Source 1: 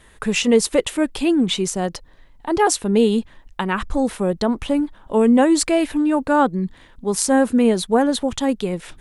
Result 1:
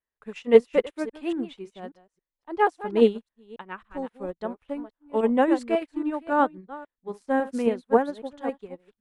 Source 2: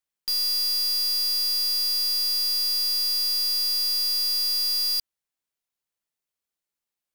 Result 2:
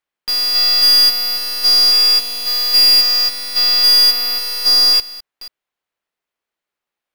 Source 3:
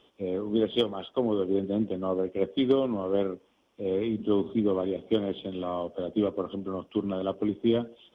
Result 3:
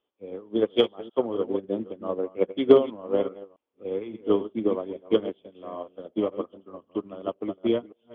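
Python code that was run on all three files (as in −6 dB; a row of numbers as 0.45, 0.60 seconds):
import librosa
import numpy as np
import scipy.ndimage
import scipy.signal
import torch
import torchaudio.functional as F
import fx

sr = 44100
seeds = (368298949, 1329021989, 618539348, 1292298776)

y = fx.reverse_delay(x, sr, ms=274, wet_db=-7)
y = fx.bass_treble(y, sr, bass_db=-8, treble_db=-14)
y = fx.upward_expand(y, sr, threshold_db=-39.0, expansion=2.5)
y = librosa.util.normalize(y) * 10.0 ** (-3 / 20.0)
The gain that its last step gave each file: +2.5, +22.0, +11.0 decibels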